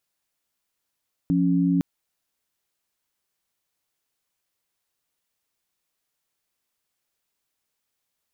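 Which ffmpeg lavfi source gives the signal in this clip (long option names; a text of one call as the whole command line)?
ffmpeg -f lavfi -i "aevalsrc='0.0944*(sin(2*PI*174.61*t)+sin(2*PI*277.18*t))':duration=0.51:sample_rate=44100" out.wav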